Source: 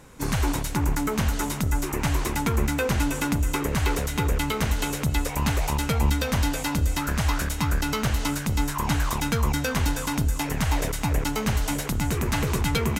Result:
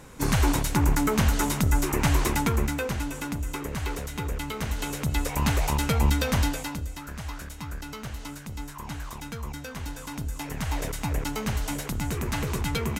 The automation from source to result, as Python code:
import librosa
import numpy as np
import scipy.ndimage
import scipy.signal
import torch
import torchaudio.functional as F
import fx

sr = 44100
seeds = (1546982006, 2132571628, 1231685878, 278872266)

y = fx.gain(x, sr, db=fx.line((2.3, 2.0), (3.03, -7.0), (4.48, -7.0), (5.44, 0.0), (6.41, 0.0), (6.92, -12.0), (9.76, -12.0), (10.91, -4.0)))